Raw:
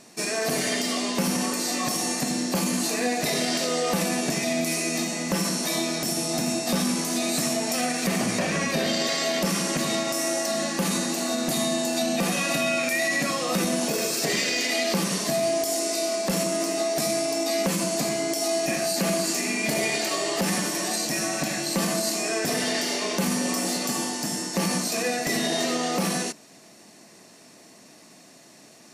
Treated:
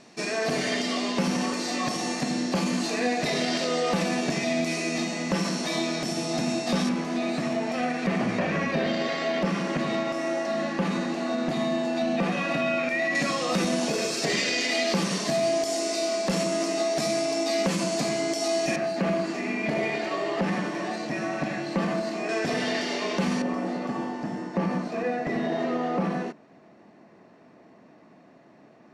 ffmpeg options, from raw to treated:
ffmpeg -i in.wav -af "asetnsamples=nb_out_samples=441:pad=0,asendcmd='6.89 lowpass f 2500;13.15 lowpass f 5900;18.76 lowpass f 2200;22.29 lowpass f 3600;23.42 lowpass f 1500',lowpass=4700" out.wav

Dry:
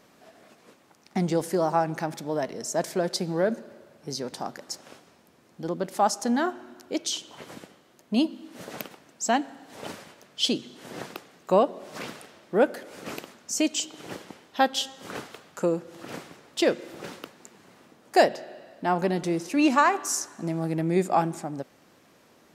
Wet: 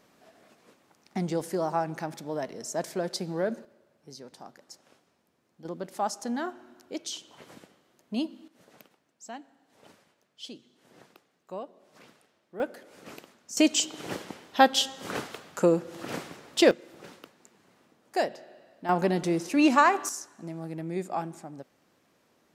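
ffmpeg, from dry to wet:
ffmpeg -i in.wav -af "asetnsamples=nb_out_samples=441:pad=0,asendcmd='3.65 volume volume -13dB;5.65 volume volume -7dB;8.48 volume volume -18dB;12.6 volume volume -9dB;13.57 volume volume 3dB;16.71 volume volume -8.5dB;18.89 volume volume 0dB;20.09 volume volume -9dB',volume=-4.5dB" out.wav

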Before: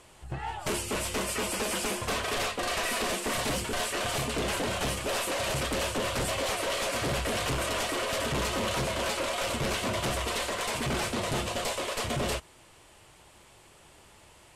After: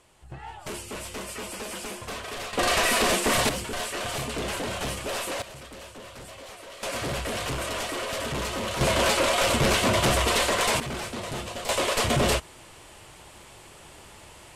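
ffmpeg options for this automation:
ffmpeg -i in.wav -af "asetnsamples=nb_out_samples=441:pad=0,asendcmd='2.53 volume volume 7.5dB;3.49 volume volume -0.5dB;5.42 volume volume -13dB;6.83 volume volume -0.5dB;8.81 volume volume 8dB;10.8 volume volume -3dB;11.69 volume volume 7.5dB',volume=-5dB" out.wav

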